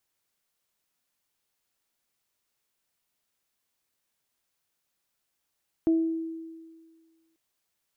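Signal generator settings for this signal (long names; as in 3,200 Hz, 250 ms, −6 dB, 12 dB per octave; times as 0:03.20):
harmonic partials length 1.49 s, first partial 326 Hz, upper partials −17.5 dB, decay 1.70 s, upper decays 0.53 s, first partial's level −18 dB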